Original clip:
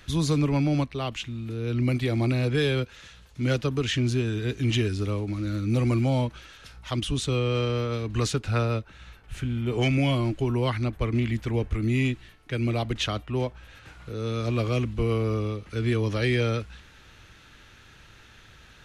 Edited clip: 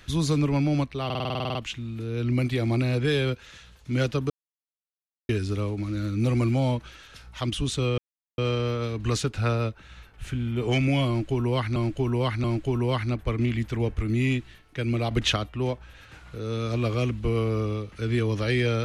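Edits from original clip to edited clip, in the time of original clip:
0:01.05: stutter 0.05 s, 11 plays
0:03.80–0:04.79: silence
0:07.48: splice in silence 0.40 s
0:10.18–0:10.86: repeat, 3 plays
0:12.85–0:13.10: clip gain +4.5 dB

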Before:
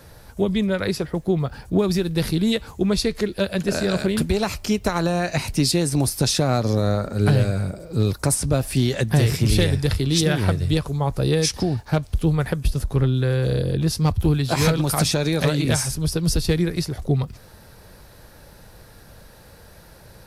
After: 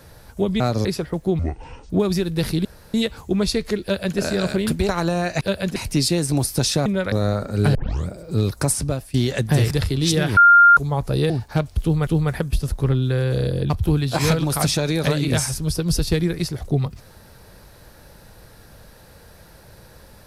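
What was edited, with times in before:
0:00.60–0:00.86: swap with 0:06.49–0:06.74
0:01.40–0:01.69: play speed 57%
0:02.44: splice in room tone 0.29 s
0:03.33–0:03.68: duplicate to 0:05.39
0:04.39–0:04.87: remove
0:07.37: tape start 0.33 s
0:08.41–0:08.76: fade out, to −22 dB
0:09.33–0:09.80: remove
0:10.46–0:10.86: beep over 1,400 Hz −7 dBFS
0:11.39–0:11.67: remove
0:12.19–0:12.44: repeat, 2 plays
0:13.82–0:14.07: remove

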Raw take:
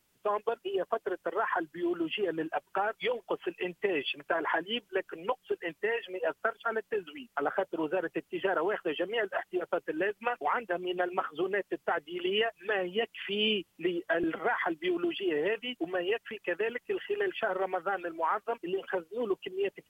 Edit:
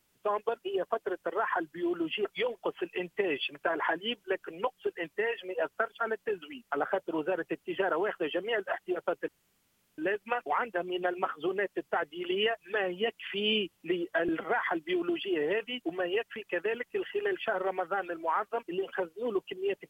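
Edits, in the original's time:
0:02.25–0:02.90: remove
0:09.93: splice in room tone 0.70 s

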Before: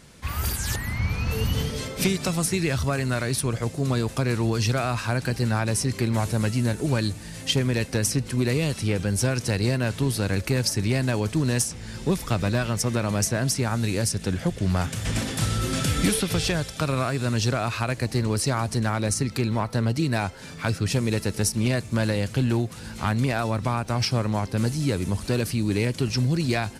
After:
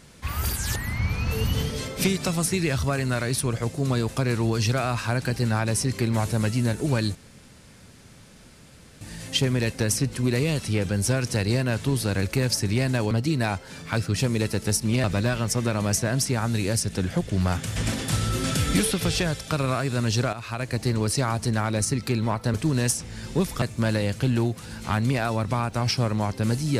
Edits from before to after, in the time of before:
0:07.15: splice in room tone 1.86 s
0:11.25–0:12.33: swap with 0:19.83–0:21.76
0:17.62–0:18.08: fade in, from −12.5 dB

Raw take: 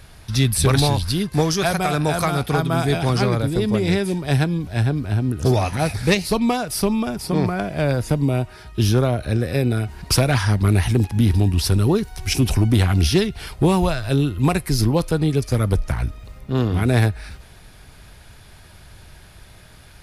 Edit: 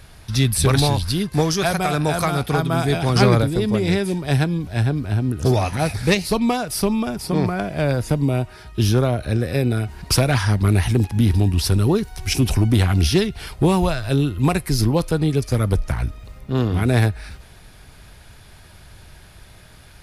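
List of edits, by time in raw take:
0:03.16–0:03.44: clip gain +5 dB

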